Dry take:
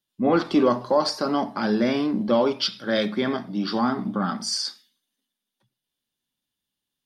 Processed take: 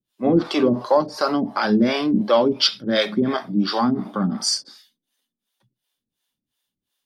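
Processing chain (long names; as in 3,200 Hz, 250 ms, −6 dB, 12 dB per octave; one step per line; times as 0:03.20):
two-band tremolo in antiphase 2.8 Hz, depth 100%, crossover 430 Hz
level +8 dB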